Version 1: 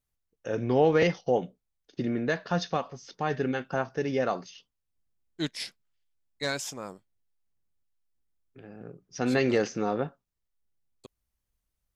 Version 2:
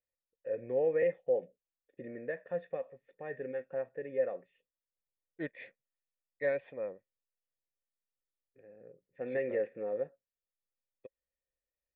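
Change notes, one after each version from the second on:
second voice +8.0 dB; master: add vocal tract filter e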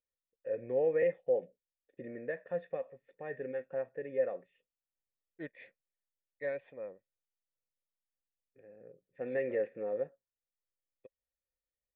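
second voice -5.0 dB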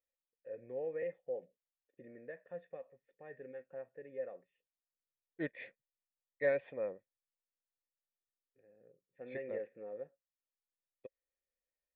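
first voice -10.0 dB; second voice +5.0 dB

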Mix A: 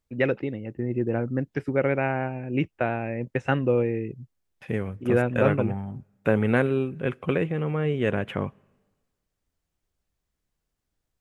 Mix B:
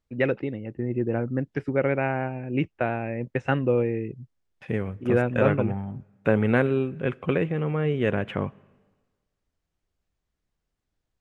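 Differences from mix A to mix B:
second voice: send +6.0 dB; master: add air absorption 54 m

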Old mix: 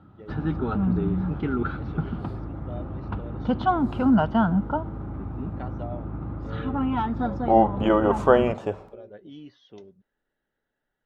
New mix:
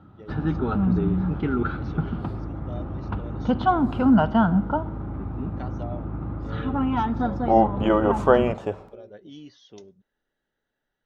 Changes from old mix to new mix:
first voice: remove LPF 3100 Hz 12 dB/oct; background: send +10.0 dB

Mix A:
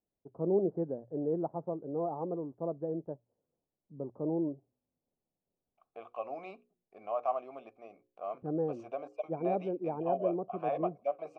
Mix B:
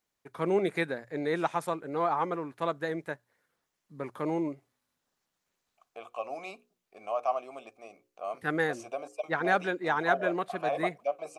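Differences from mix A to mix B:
first voice: remove inverse Chebyshev low-pass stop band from 3100 Hz, stop band 70 dB; master: remove tape spacing loss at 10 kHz 36 dB

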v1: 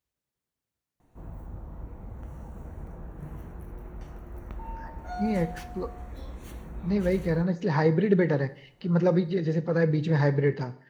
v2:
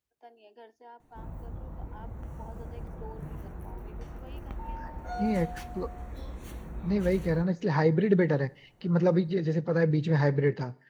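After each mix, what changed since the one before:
first voice: unmuted; second voice: send -8.5 dB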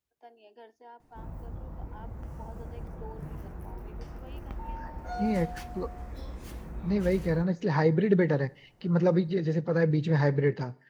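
background: remove Butterworth band-stop 5000 Hz, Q 5.2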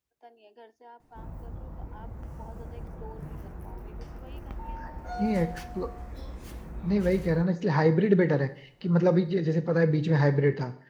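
second voice: send +10.5 dB

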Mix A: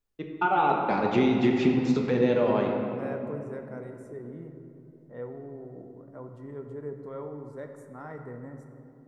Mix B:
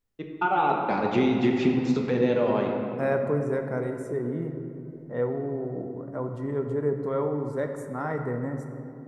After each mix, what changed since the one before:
second voice +11.0 dB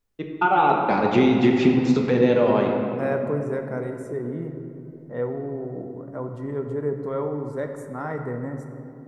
first voice +5.0 dB

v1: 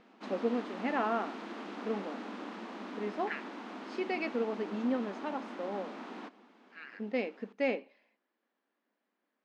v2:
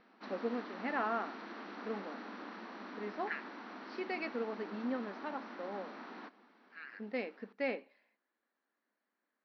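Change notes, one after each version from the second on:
master: add rippled Chebyshev low-pass 5900 Hz, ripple 6 dB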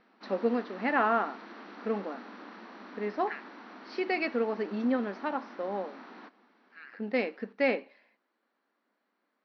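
first voice +9.0 dB

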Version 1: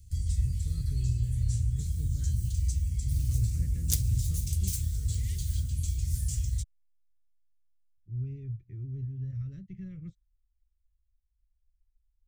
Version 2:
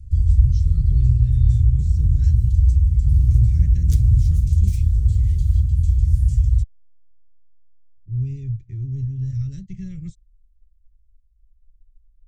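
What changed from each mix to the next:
speech: remove LPF 1100 Hz 12 dB/oct; master: add tilt -3.5 dB/oct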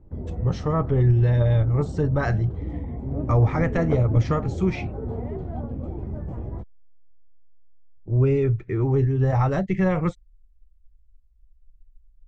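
background: add band-pass 300 Hz, Q 1.8; master: remove Chebyshev band-stop 100–6400 Hz, order 2

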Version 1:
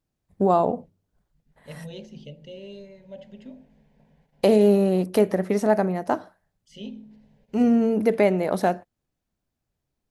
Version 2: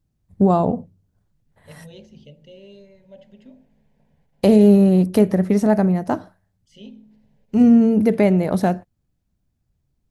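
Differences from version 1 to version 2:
first voice: add tone controls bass +13 dB, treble +2 dB; second voice -3.5 dB

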